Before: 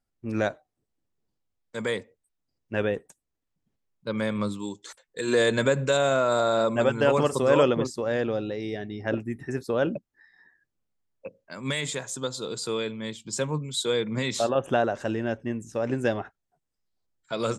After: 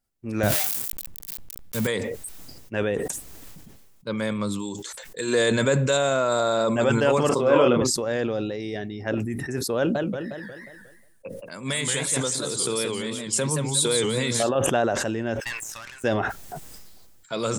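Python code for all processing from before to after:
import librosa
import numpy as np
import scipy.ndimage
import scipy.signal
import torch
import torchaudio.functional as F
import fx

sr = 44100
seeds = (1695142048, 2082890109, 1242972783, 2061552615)

y = fx.chain(x, sr, fx.crossing_spikes(level_db=-21.5),
    fx.bass_treble(bass_db=14, treble_db=-6), at=(0.43, 1.87))
y = fx.chain(y, sr, fx.bandpass_edges(low_hz=140.0, high_hz=3100.0),
    fx.notch(hz=1800.0, q=10.0),
    fx.doubler(ms=25.0, db=-5), at=(7.29, 7.82))
y = fx.chain(y, sr, fx.peak_eq(hz=9500.0, db=14.0, octaves=0.2),
    fx.echo_warbled(ms=179, feedback_pct=33, rate_hz=2.8, cents=208, wet_db=-4), at=(9.77, 14.43))
y = fx.chain(y, sr, fx.highpass(hz=1200.0, slope=24),
    fx.tube_stage(drive_db=43.0, bias=0.75), at=(15.4, 16.04))
y = fx.high_shelf(y, sr, hz=6700.0, db=9.0)
y = fx.sustainer(y, sr, db_per_s=28.0)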